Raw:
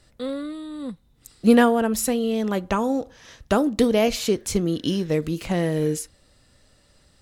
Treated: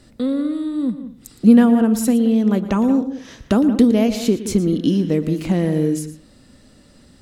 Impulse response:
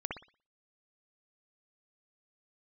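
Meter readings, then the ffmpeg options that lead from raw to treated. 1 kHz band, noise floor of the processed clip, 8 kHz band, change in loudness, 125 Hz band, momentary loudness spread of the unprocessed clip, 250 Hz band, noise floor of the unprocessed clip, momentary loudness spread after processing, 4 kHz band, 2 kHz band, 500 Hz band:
-2.5 dB, -50 dBFS, -1.0 dB, +5.0 dB, +6.0 dB, 15 LU, +8.0 dB, -59 dBFS, 12 LU, -2.0 dB, -3.5 dB, +0.5 dB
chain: -filter_complex "[0:a]equalizer=f=240:w=1.2:g=13,acompressor=threshold=-33dB:ratio=1.5,asplit=2[a][b];[1:a]atrim=start_sample=2205,adelay=115[c];[b][c]afir=irnorm=-1:irlink=0,volume=-12.5dB[d];[a][d]amix=inputs=2:normalize=0,volume=5dB"

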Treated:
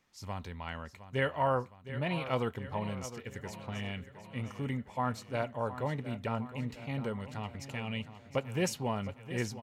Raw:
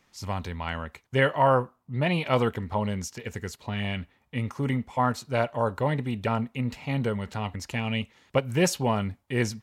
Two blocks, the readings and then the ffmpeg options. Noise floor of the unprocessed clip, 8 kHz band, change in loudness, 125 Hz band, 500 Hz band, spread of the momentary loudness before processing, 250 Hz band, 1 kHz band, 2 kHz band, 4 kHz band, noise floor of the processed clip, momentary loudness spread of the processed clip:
-69 dBFS, -8.5 dB, -8.0 dB, -8.0 dB, -8.5 dB, 10 LU, -8.0 dB, -8.0 dB, -8.0 dB, -8.0 dB, -55 dBFS, 10 LU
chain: -af "aecho=1:1:712|1424|2136|2848|3560|4272:0.224|0.123|0.0677|0.0372|0.0205|0.0113,volume=-8.5dB"

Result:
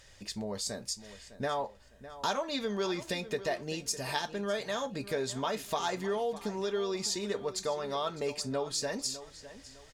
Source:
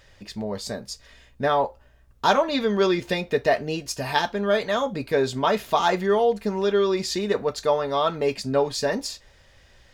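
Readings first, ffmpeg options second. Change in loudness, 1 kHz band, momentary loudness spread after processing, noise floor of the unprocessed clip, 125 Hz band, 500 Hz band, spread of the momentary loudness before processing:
-10.5 dB, -12.0 dB, 8 LU, -55 dBFS, -9.5 dB, -11.5 dB, 11 LU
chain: -filter_complex "[0:a]equalizer=f=8k:t=o:w=1.5:g=11.5,acompressor=threshold=-30dB:ratio=2,asplit=2[a][b];[b]adelay=606,lowpass=f=4.6k:p=1,volume=-14.5dB,asplit=2[c][d];[d]adelay=606,lowpass=f=4.6k:p=1,volume=0.32,asplit=2[e][f];[f]adelay=606,lowpass=f=4.6k:p=1,volume=0.32[g];[c][e][g]amix=inputs=3:normalize=0[h];[a][h]amix=inputs=2:normalize=0,volume=-5dB"

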